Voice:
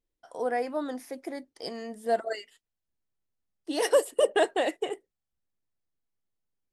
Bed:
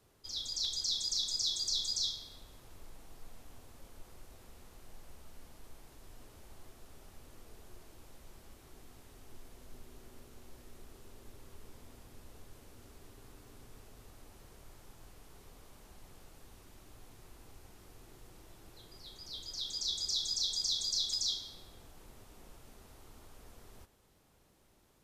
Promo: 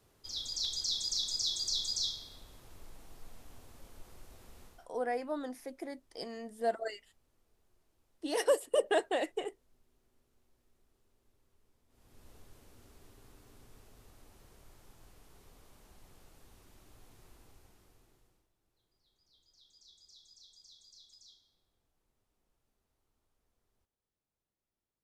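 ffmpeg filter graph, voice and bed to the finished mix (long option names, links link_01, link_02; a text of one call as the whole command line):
ffmpeg -i stem1.wav -i stem2.wav -filter_complex "[0:a]adelay=4550,volume=-5.5dB[link_01];[1:a]volume=16.5dB,afade=type=out:start_time=4.64:duration=0.25:silence=0.1,afade=type=in:start_time=11.88:duration=0.41:silence=0.149624,afade=type=out:start_time=17.3:duration=1.19:silence=0.0794328[link_02];[link_01][link_02]amix=inputs=2:normalize=0" out.wav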